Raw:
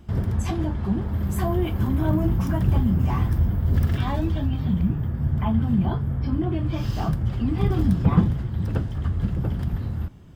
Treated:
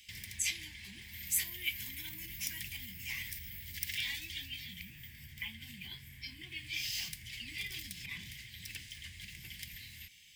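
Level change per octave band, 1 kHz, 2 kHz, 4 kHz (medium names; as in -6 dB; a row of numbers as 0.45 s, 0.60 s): -33.5 dB, +1.0 dB, +5.0 dB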